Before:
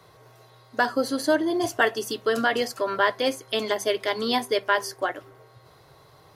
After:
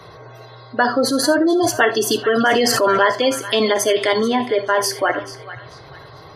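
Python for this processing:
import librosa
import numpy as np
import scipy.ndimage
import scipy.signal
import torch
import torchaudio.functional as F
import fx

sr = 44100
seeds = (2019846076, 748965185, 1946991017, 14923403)

p1 = fx.spec_gate(x, sr, threshold_db=-25, keep='strong')
p2 = fx.over_compress(p1, sr, threshold_db=-29.0, ratio=-1.0)
p3 = p1 + (p2 * 10.0 ** (0.0 / 20.0))
p4 = fx.air_absorb(p3, sr, metres=410.0, at=(4.2, 4.8))
p5 = p4 + fx.echo_banded(p4, sr, ms=437, feedback_pct=42, hz=2600.0, wet_db=-11.5, dry=0)
p6 = fx.rev_gated(p5, sr, seeds[0], gate_ms=100, shape='flat', drr_db=10.5)
p7 = fx.sustainer(p6, sr, db_per_s=21.0, at=(2.34, 3.03))
y = p7 * 10.0 ** (4.0 / 20.0)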